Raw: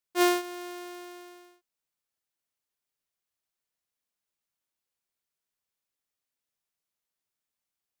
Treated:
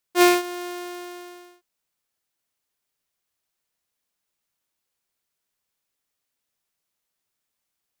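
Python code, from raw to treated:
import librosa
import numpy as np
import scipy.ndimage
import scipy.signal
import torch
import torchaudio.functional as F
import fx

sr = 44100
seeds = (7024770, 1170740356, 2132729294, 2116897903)

y = fx.rattle_buzz(x, sr, strikes_db=-37.0, level_db=-28.0)
y = y * 10.0 ** (7.0 / 20.0)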